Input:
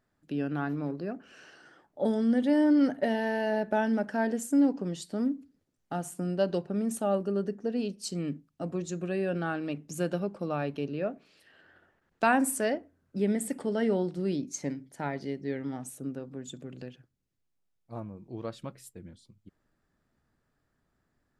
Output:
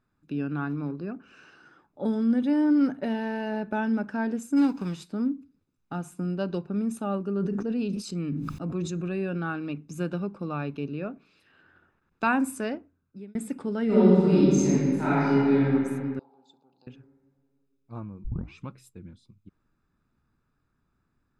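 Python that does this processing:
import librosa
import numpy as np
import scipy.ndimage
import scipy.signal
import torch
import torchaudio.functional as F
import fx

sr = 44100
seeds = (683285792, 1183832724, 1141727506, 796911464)

y = fx.envelope_flatten(x, sr, power=0.6, at=(4.56, 5.07), fade=0.02)
y = fx.sustainer(y, sr, db_per_s=28.0, at=(7.33, 9.27))
y = fx.reverb_throw(y, sr, start_s=13.85, length_s=1.79, rt60_s=2.2, drr_db=-11.0)
y = fx.double_bandpass(y, sr, hz=1900.0, octaves=2.4, at=(16.19, 16.87))
y = fx.edit(y, sr, fx.fade_out_span(start_s=12.67, length_s=0.68),
    fx.tape_start(start_s=18.24, length_s=0.44), tone=tone)
y = fx.high_shelf(y, sr, hz=5900.0, db=-11.5)
y = y + 0.52 * np.pad(y, (int(0.8 * sr / 1000.0), 0))[:len(y)]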